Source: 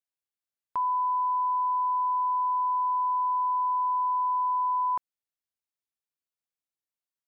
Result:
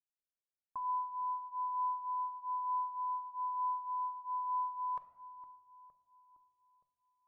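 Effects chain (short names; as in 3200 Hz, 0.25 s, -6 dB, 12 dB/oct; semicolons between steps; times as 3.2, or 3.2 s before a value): low-pass opened by the level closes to 840 Hz, open at -25 dBFS; on a send: darkening echo 0.462 s, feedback 66%, low-pass 950 Hz, level -13 dB; on the sum: shoebox room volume 650 m³, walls mixed, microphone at 0.48 m; cascading flanger rising 1.1 Hz; gain -6.5 dB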